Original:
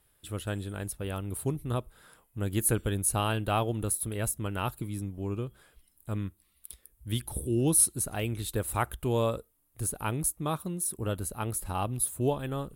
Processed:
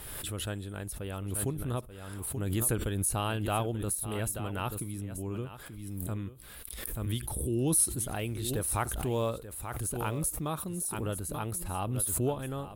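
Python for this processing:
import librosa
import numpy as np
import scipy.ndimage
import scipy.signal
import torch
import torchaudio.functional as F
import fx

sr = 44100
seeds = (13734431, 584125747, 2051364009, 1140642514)

y = fx.block_float(x, sr, bits=7, at=(7.74, 10.5))
y = y + 10.0 ** (-13.5 / 20.0) * np.pad(y, (int(884 * sr / 1000.0), 0))[:len(y)]
y = fx.pre_swell(y, sr, db_per_s=30.0)
y = y * 10.0 ** (-3.5 / 20.0)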